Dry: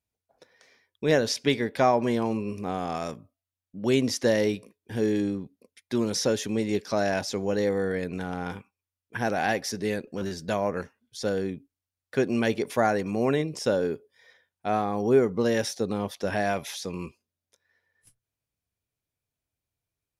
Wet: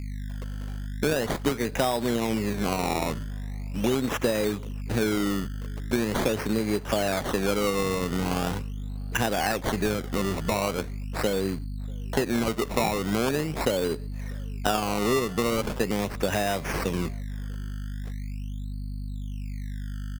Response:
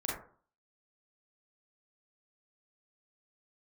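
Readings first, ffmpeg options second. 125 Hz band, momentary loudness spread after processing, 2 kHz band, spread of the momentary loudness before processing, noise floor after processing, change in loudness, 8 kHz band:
+4.0 dB, 11 LU, +1.5 dB, 13 LU, -34 dBFS, -1.0 dB, +2.0 dB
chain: -filter_complex "[0:a]acrossover=split=120|4300[a][b][c];[b]acrusher=bits=3:mode=log:mix=0:aa=0.000001[d];[a][d][c]amix=inputs=3:normalize=0,aeval=exprs='val(0)+0.01*(sin(2*PI*50*n/s)+sin(2*PI*2*50*n/s)/2+sin(2*PI*3*50*n/s)/3+sin(2*PI*4*50*n/s)/4+sin(2*PI*5*50*n/s)/5)':c=same,acompressor=threshold=-30dB:ratio=6,acrusher=samples=19:mix=1:aa=0.000001:lfo=1:lforange=19:lforate=0.41,asplit=2[e][f];[f]adelay=641.4,volume=-27dB,highshelf=f=4k:g=-14.4[g];[e][g]amix=inputs=2:normalize=0,volume=8dB"

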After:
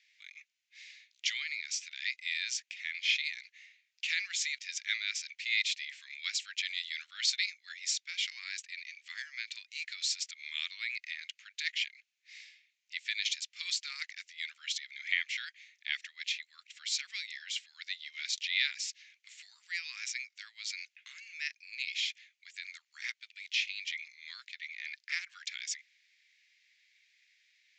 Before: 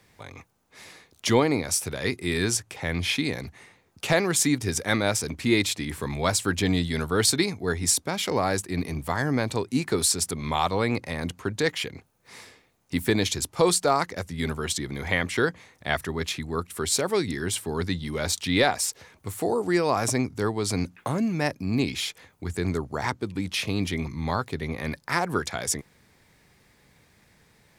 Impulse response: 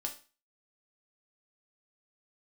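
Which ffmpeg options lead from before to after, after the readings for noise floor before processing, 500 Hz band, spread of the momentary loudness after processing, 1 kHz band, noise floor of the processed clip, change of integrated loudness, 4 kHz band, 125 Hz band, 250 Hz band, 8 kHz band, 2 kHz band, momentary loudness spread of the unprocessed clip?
-62 dBFS, under -40 dB, 16 LU, -33.5 dB, -81 dBFS, -9.5 dB, -3.5 dB, under -40 dB, under -40 dB, -12.0 dB, -5.0 dB, 9 LU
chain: -af "asuperpass=centerf=5300:order=12:qfactor=0.57,aemphasis=mode=reproduction:type=riaa,aresample=16000,aresample=44100,volume=3dB"

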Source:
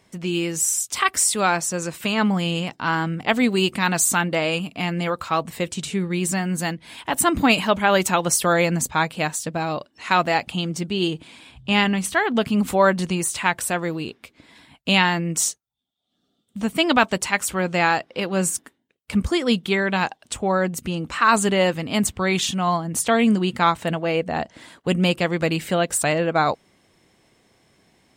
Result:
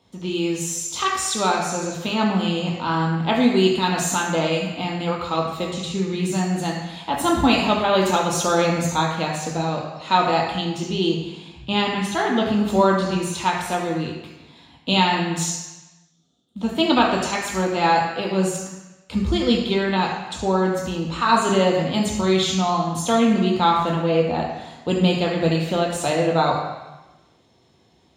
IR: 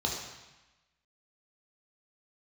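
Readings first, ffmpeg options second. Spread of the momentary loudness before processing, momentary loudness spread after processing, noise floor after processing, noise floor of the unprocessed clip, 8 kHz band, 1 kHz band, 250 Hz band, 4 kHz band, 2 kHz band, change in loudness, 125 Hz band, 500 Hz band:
9 LU, 9 LU, -58 dBFS, -69 dBFS, -5.0 dB, +1.5 dB, +1.5 dB, +1.0 dB, -4.0 dB, 0.0 dB, +1.5 dB, +1.5 dB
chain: -filter_complex "[1:a]atrim=start_sample=2205[a];[0:a][a]afir=irnorm=-1:irlink=0,volume=-8dB"

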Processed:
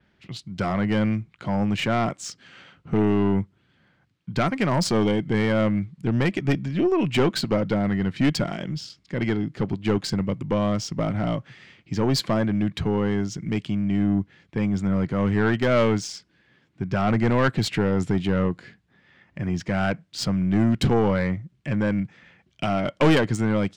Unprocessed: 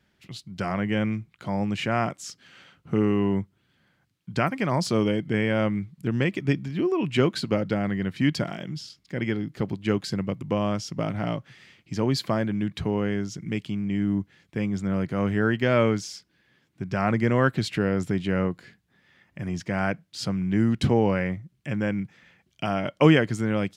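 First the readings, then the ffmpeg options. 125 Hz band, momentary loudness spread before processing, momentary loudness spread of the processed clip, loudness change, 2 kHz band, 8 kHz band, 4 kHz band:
+2.5 dB, 11 LU, 10 LU, +2.0 dB, +0.5 dB, +4.0 dB, +3.0 dB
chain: -af "adynamicequalizer=threshold=0.00178:dfrequency=8500:dqfactor=1.1:tfrequency=8500:tqfactor=1.1:attack=5:release=100:ratio=0.375:range=3.5:mode=boostabove:tftype=bell,adynamicsmooth=sensitivity=3:basefreq=4.9k,aeval=exprs='(tanh(7.94*val(0)+0.25)-tanh(0.25))/7.94':c=same,volume=5dB"

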